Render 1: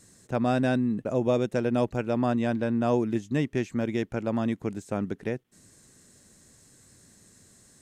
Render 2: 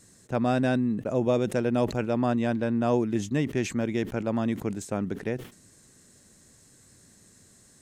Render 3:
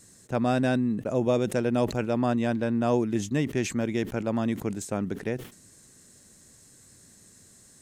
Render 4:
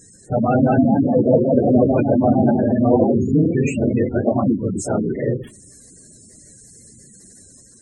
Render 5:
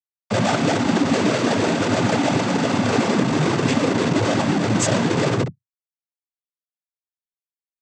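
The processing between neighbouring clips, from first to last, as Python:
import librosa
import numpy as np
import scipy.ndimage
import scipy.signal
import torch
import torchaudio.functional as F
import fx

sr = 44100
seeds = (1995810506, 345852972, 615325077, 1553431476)

y1 = fx.sustainer(x, sr, db_per_s=130.0)
y2 = fx.high_shelf(y1, sr, hz=5600.0, db=4.5)
y3 = fx.phase_scramble(y2, sr, seeds[0], window_ms=50)
y3 = fx.echo_pitch(y3, sr, ms=245, semitones=1, count=2, db_per_echo=-3.0)
y3 = fx.spec_gate(y3, sr, threshold_db=-15, keep='strong')
y3 = y3 * librosa.db_to_amplitude(8.0)
y4 = fx.schmitt(y3, sr, flips_db=-31.0)
y4 = fx.noise_vocoder(y4, sr, seeds[1], bands=16)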